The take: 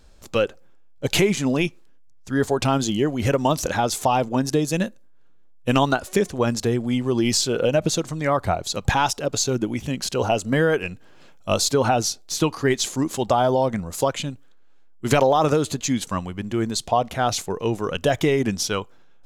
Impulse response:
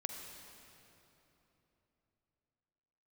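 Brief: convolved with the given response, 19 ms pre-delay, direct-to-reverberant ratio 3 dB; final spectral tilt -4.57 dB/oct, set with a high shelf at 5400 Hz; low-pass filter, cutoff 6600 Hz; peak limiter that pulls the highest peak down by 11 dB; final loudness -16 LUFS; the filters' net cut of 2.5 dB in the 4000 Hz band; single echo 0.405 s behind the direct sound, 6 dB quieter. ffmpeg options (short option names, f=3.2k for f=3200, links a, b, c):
-filter_complex "[0:a]lowpass=6.6k,equalizer=f=4k:t=o:g=-6,highshelf=f=5.4k:g=7.5,alimiter=limit=-16.5dB:level=0:latency=1,aecho=1:1:405:0.501,asplit=2[a][b];[1:a]atrim=start_sample=2205,adelay=19[c];[b][c]afir=irnorm=-1:irlink=0,volume=-2.5dB[d];[a][d]amix=inputs=2:normalize=0,volume=8.5dB"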